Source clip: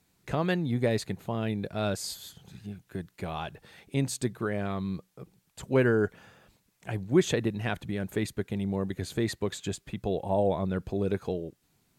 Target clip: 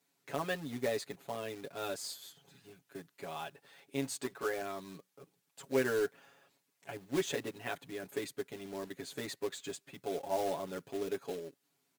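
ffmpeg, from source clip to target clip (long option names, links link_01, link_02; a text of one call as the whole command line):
ffmpeg -i in.wav -filter_complex "[0:a]asettb=1/sr,asplit=3[link_01][link_02][link_03];[link_01]atrim=end=4.204[link_04];[link_02]atrim=start=4.2:end=4.62,asetpts=PTS-STARTPTS,afade=type=in:duration=0.004:curve=qsin,afade=type=out:start_time=0.416:duration=0.004:curve=qsin,asplit=2[link_05][link_06];[link_06]highpass=frequency=720:poles=1,volume=15dB,asoftclip=type=tanh:threshold=-16dB[link_07];[link_05][link_07]amix=inputs=2:normalize=0,lowpass=frequency=1600:poles=1,volume=-6dB[link_08];[link_03]atrim=start=4.616[link_09];[link_04][link_08]acrossfade=duration=0.004:curve1=hsin:curve2=qsin[link_10];[link_10][link_09]acrossfade=duration=0.004:curve1=qsin:curve2=hsin,highpass=280,acrusher=bits=3:mode=log:mix=0:aa=0.000001,aecho=1:1:7.2:0.98,volume=-9dB" out.wav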